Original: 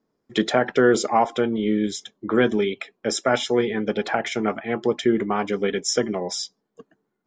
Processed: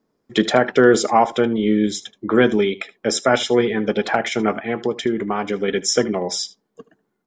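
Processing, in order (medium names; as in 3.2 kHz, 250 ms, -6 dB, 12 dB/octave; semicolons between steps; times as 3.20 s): 4.57–5.68 s: compression 2.5:1, threshold -23 dBFS, peak gain reduction 6.5 dB; delay 76 ms -19 dB; trim +4 dB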